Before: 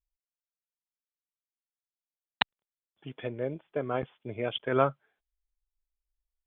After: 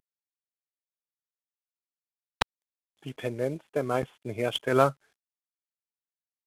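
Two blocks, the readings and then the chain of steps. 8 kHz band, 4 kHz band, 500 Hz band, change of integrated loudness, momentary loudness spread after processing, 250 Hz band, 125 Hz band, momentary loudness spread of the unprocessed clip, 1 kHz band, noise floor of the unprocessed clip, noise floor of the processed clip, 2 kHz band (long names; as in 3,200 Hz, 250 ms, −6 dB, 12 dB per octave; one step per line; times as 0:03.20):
can't be measured, 0.0 dB, +3.5 dB, +3.0 dB, 13 LU, +3.5 dB, +3.5 dB, 13 LU, +3.0 dB, below −85 dBFS, below −85 dBFS, +1.0 dB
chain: variable-slope delta modulation 64 kbit/s
level +3.5 dB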